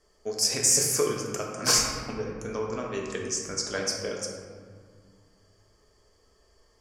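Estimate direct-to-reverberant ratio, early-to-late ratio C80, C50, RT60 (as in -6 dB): -1.5 dB, 3.5 dB, 2.0 dB, 1.8 s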